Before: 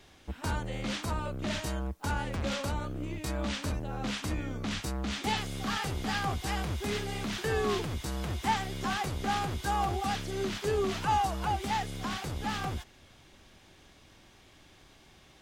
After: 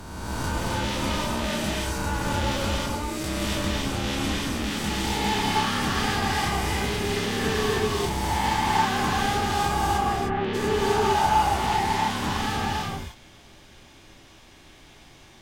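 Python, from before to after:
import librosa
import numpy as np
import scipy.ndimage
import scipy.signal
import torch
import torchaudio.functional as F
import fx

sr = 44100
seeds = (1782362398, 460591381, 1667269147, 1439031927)

y = fx.spec_swells(x, sr, rise_s=1.84)
y = fx.lowpass(y, sr, hz=fx.line((9.97, 1500.0), (10.53, 3800.0)), slope=24, at=(9.97, 10.53), fade=0.02)
y = 10.0 ** (-19.5 / 20.0) * (np.abs((y / 10.0 ** (-19.5 / 20.0) + 3.0) % 4.0 - 2.0) - 1.0)
y = fx.rev_gated(y, sr, seeds[0], gate_ms=330, shape='rising', drr_db=-2.0)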